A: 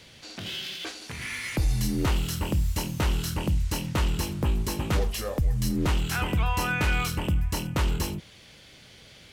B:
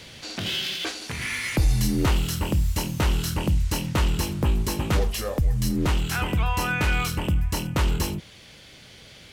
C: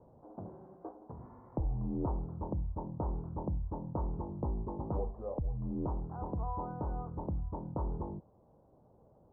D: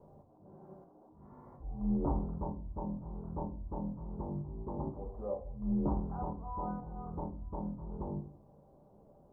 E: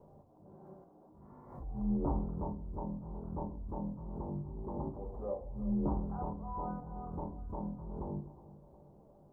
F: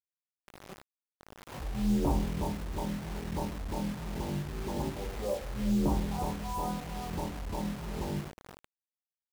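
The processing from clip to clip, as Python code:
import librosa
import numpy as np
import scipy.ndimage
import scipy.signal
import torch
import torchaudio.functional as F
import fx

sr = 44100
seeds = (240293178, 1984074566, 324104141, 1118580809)

y1 = fx.rider(x, sr, range_db=4, speed_s=2.0)
y1 = F.gain(torch.from_numpy(y1), 3.0).numpy()
y2 = scipy.signal.sosfilt(scipy.signal.butter(8, 980.0, 'lowpass', fs=sr, output='sos'), y1)
y2 = fx.low_shelf(y2, sr, hz=350.0, db=-7.5)
y2 = F.gain(torch.from_numpy(y2), -6.5).numpy()
y3 = fx.auto_swell(y2, sr, attack_ms=333.0)
y3 = fx.room_shoebox(y3, sr, seeds[0], volume_m3=310.0, walls='furnished', distance_m=1.2)
y4 = fx.echo_feedback(y3, sr, ms=363, feedback_pct=54, wet_db=-16.5)
y4 = fx.pre_swell(y4, sr, db_per_s=75.0)
y4 = F.gain(torch.from_numpy(y4), -1.0).numpy()
y5 = fx.quant_dither(y4, sr, seeds[1], bits=8, dither='none')
y5 = F.gain(torch.from_numpy(y5), 5.0).numpy()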